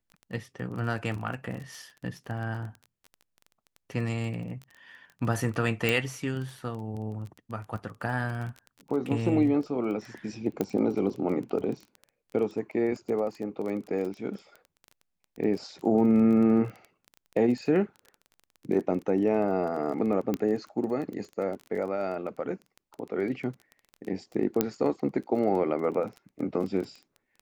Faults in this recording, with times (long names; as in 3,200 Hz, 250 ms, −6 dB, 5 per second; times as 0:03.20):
surface crackle 18 per second −35 dBFS
0:05.89: click
0:10.61: click −15 dBFS
0:20.34: click −16 dBFS
0:24.61: click −9 dBFS